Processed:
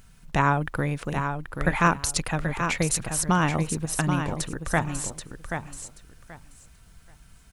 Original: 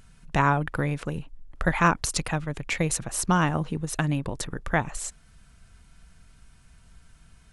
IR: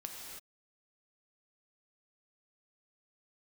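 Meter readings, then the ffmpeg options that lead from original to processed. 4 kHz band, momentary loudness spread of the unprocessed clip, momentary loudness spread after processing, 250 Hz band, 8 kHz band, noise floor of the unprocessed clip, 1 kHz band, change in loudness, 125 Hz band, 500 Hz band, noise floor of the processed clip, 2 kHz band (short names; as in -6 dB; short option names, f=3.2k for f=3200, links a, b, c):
+1.5 dB, 11 LU, 12 LU, +1.0 dB, +2.5 dB, -56 dBFS, +1.0 dB, +0.5 dB, +1.0 dB, +1.0 dB, -53 dBFS, +1.0 dB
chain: -filter_complex "[0:a]highshelf=f=9.7k:g=5,acrusher=bits=10:mix=0:aa=0.000001,asplit=2[a][b];[b]aecho=0:1:781|1562|2343:0.447|0.0849|0.0161[c];[a][c]amix=inputs=2:normalize=0"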